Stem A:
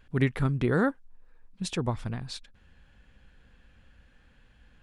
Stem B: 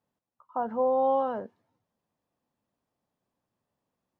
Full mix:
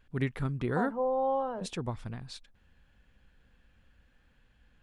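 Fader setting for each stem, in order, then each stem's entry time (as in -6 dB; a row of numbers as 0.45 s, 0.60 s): -6.0 dB, -4.5 dB; 0.00 s, 0.20 s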